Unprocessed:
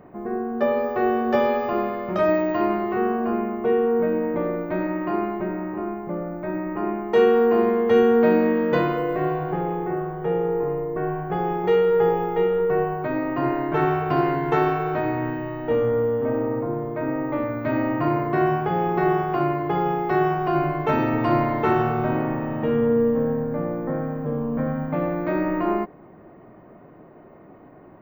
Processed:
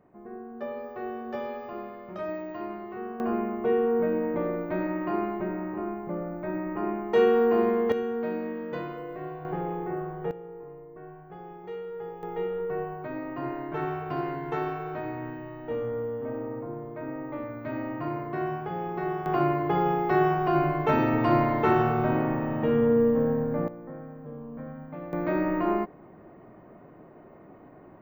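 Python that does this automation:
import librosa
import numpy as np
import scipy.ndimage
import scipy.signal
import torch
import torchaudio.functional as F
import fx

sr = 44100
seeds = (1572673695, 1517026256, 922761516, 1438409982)

y = fx.gain(x, sr, db=fx.steps((0.0, -14.0), (3.2, -4.0), (7.92, -13.5), (9.45, -6.0), (10.31, -19.0), (12.23, -10.0), (19.26, -2.0), (23.68, -14.5), (25.13, -3.0)))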